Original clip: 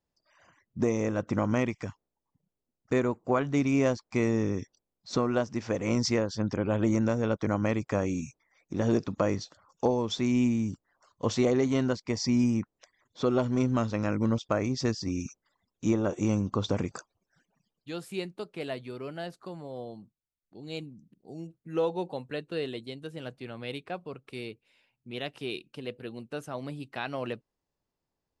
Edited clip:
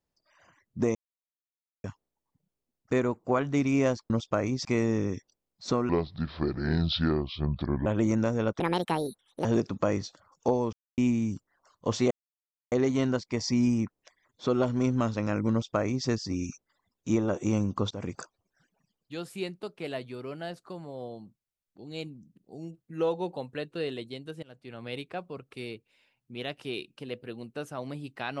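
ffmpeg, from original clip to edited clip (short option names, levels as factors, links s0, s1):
-filter_complex "[0:a]asplit=14[s0][s1][s2][s3][s4][s5][s6][s7][s8][s9][s10][s11][s12][s13];[s0]atrim=end=0.95,asetpts=PTS-STARTPTS,afade=t=out:st=0.946:d=0.004:c=hsin[s14];[s1]atrim=start=0.95:end=1.84,asetpts=PTS-STARTPTS,volume=0[s15];[s2]atrim=start=1.84:end=4.102,asetpts=PTS-STARTPTS,afade=t=in:d=0.004:c=hsin[s16];[s3]atrim=start=14.278:end=14.832[s17];[s4]atrim=start=4.098:end=5.344[s18];[s5]atrim=start=5.34:end=6.7,asetpts=PTS-STARTPTS,asetrate=30429,aresample=44100[s19];[s6]atrim=start=6.696:end=7.444[s20];[s7]atrim=start=7.44:end=8.82,asetpts=PTS-STARTPTS,asetrate=71883,aresample=44100,atrim=end_sample=37336,asetpts=PTS-STARTPTS[s21];[s8]atrim=start=8.816:end=10.1,asetpts=PTS-STARTPTS,afade=t=out:st=1.28:d=0.004:c=hsin[s22];[s9]atrim=start=10.1:end=10.35,asetpts=PTS-STARTPTS,volume=0[s23];[s10]atrim=start=10.35:end=11.48,asetpts=PTS-STARTPTS,afade=t=in:d=0.004:c=hsin,afade=t=out:st=1.126:d=0.004:c=hsin,apad=pad_dur=0.61[s24];[s11]atrim=start=11.48:end=16.67,asetpts=PTS-STARTPTS,afade=t=in:d=0.004:c=hsin,afade=t=out:st=5.186:d=0.004:c=hsin:silence=0.105925[s25];[s12]atrim=start=16.67:end=23.19,asetpts=PTS-STARTPTS,afade=t=in:d=0.26:silence=0.105925,afade=t=out:st=6.516:d=0.004:c=hsin:silence=0.0891251[s26];[s13]atrim=start=23.19,asetpts=PTS-STARTPTS,afade=t=in:d=0.42:silence=0.0891251[s27];[s14][s15][s16]concat=n=3:v=0:a=1[s28];[s28][s17]acrossfade=d=0.004:c1=hsin:c2=hsin[s29];[s29][s18]acrossfade=d=0.004:c1=hsin:c2=hsin[s30];[s30][s19]acrossfade=d=0.004:c1=hsin:c2=hsin[s31];[s31][s20]acrossfade=d=0.004:c1=hsin:c2=hsin[s32];[s32][s21]acrossfade=d=0.004:c1=hsin:c2=hsin[s33];[s22][s23][s24][s25][s26][s27]concat=n=6:v=0:a=1[s34];[s33][s34]acrossfade=d=0.004:c1=hsin:c2=hsin"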